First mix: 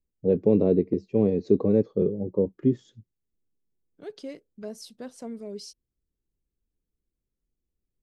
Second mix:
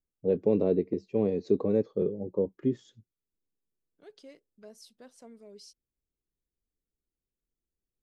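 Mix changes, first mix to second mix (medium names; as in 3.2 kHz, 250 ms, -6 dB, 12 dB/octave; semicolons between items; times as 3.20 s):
second voice -8.5 dB; master: add bass shelf 390 Hz -8.5 dB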